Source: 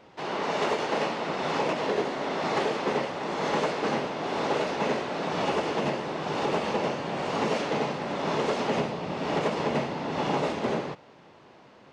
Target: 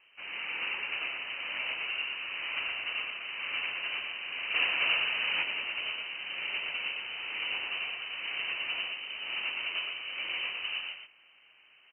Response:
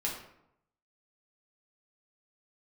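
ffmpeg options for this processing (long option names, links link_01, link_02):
-filter_complex "[0:a]asplit=2[link_01][link_02];[link_02]aecho=0:1:117:0.631[link_03];[link_01][link_03]amix=inputs=2:normalize=0,asettb=1/sr,asplit=3[link_04][link_05][link_06];[link_04]atrim=end=4.544[link_07];[link_05]atrim=start=4.54:end=5.43,asetpts=PTS-STARTPTS,afade=type=in:duration=0.004:curve=qsin,afade=type=out:start_time=0.886:duration=0.004:curve=qsin,acontrast=82[link_08];[link_06]atrim=start=5.426[link_09];[link_07][link_08]acrossfade=duration=0.004:curve1=hsin:curve2=qsin[link_10];[link_10][link_09]acrossfade=duration=0.004:curve1=qsin:curve2=hsin,lowpass=frequency=2700:width_type=q:width=0.5098,lowpass=frequency=2700:width_type=q:width=0.6013,lowpass=frequency=2700:width_type=q:width=0.9,lowpass=frequency=2700:width_type=q:width=2.563,afreqshift=-3200,volume=-9dB"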